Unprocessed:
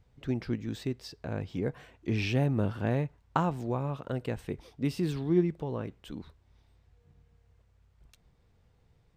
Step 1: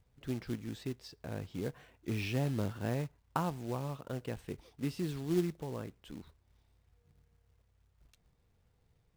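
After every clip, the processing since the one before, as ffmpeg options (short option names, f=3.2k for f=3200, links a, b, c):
-af "acrusher=bits=4:mode=log:mix=0:aa=0.000001,volume=-6dB"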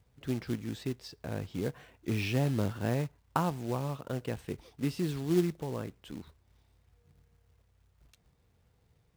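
-af "highpass=44,volume=4dB"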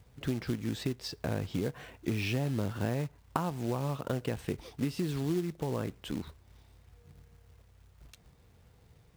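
-af "acompressor=threshold=-37dB:ratio=6,volume=8dB"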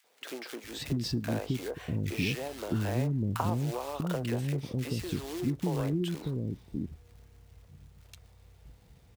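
-filter_complex "[0:a]acrossover=split=380|1300[a][b][c];[b]adelay=40[d];[a]adelay=640[e];[e][d][c]amix=inputs=3:normalize=0,volume=3dB"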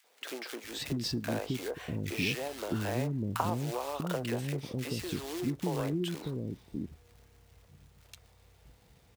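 -af "lowshelf=f=220:g=-8,volume=1.5dB"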